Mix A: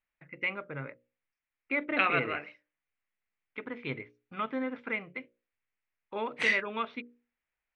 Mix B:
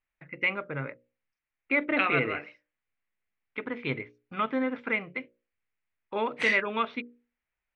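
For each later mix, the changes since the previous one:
first voice +5.0 dB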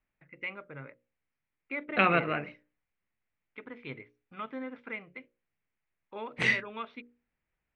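first voice -10.5 dB; second voice: remove HPF 1100 Hz 6 dB/oct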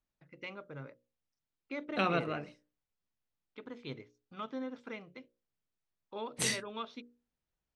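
second voice -4.0 dB; master: remove synth low-pass 2200 Hz, resonance Q 3

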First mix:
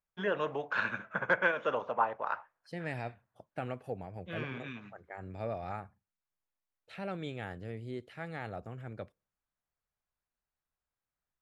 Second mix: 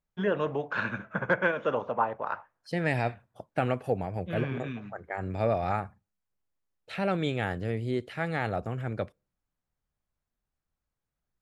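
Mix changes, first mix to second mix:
first voice: add low shelf 410 Hz +11 dB; second voice +10.5 dB

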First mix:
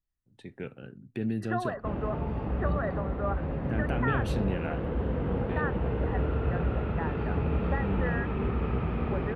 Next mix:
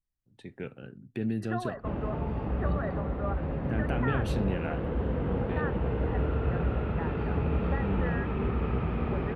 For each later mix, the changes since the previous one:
second voice -3.5 dB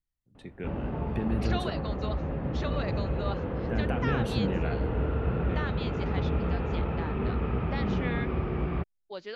second voice: remove brick-wall FIR low-pass 2000 Hz; background: entry -1.20 s

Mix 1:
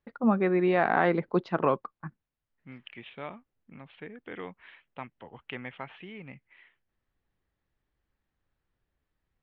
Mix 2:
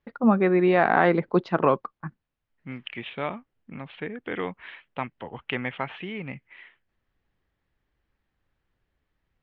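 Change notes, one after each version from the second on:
first voice +4.5 dB; second voice +9.5 dB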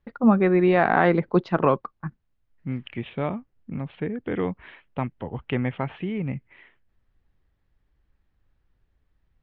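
second voice: add tilt shelf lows +6 dB, about 870 Hz; master: add low shelf 110 Hz +11.5 dB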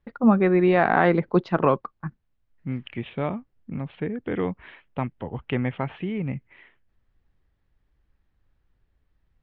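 none

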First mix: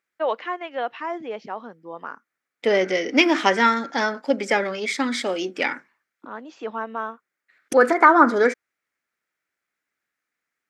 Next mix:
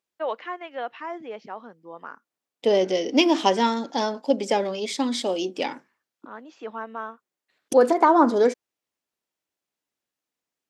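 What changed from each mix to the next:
first voice -4.5 dB; second voice: add band shelf 1700 Hz -13 dB 1.1 oct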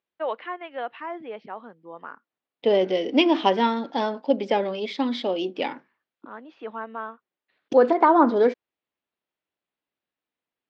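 master: add LPF 3800 Hz 24 dB/oct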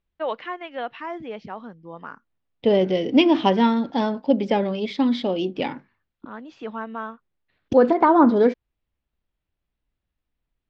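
first voice: remove air absorption 230 m; master: remove HPF 330 Hz 12 dB/oct

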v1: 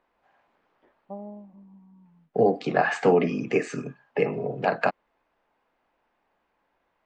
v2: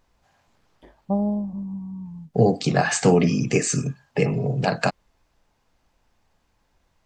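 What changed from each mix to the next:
first voice +11.0 dB; master: remove three-band isolator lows -19 dB, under 240 Hz, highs -23 dB, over 2900 Hz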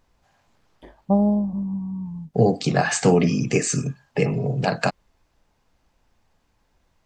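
first voice +4.5 dB

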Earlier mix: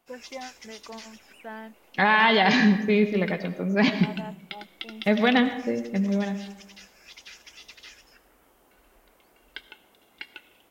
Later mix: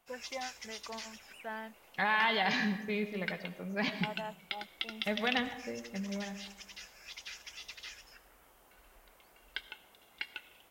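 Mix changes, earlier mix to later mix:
second voice -9.0 dB; master: add bell 290 Hz -7.5 dB 1.6 oct

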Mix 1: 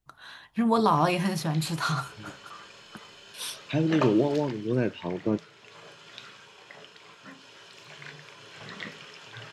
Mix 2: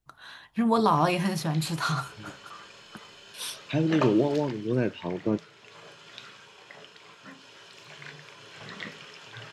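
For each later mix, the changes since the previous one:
none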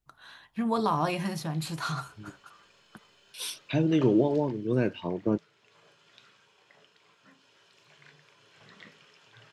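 first voice -4.5 dB; background -12.0 dB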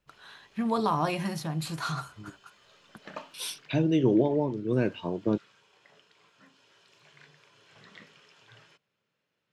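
background: entry -0.85 s

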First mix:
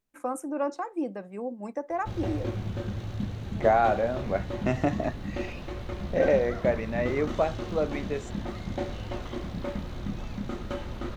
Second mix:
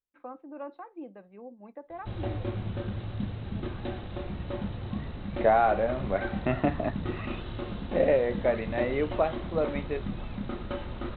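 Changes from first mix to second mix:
first voice -10.5 dB; second voice: entry +1.80 s; master: add Chebyshev low-pass 3900 Hz, order 6

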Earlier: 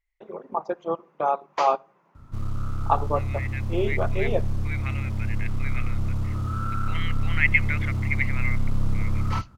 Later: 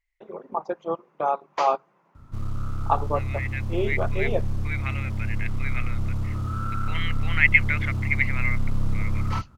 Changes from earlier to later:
second voice +4.0 dB; reverb: off

